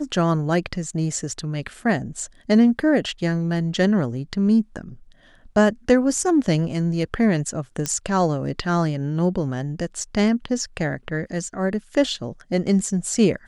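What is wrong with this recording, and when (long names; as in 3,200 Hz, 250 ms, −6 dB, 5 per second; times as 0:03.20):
0:07.86: click −9 dBFS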